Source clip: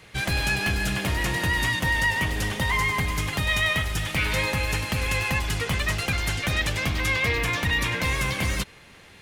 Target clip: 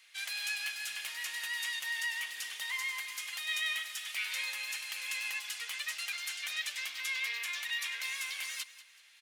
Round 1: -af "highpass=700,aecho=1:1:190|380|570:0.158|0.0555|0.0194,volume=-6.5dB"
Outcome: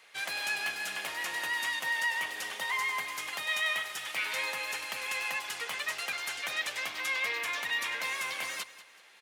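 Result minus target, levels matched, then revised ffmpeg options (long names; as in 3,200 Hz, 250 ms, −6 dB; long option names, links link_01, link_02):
500 Hz band +16.0 dB
-af "highpass=2300,aecho=1:1:190|380|570:0.158|0.0555|0.0194,volume=-6.5dB"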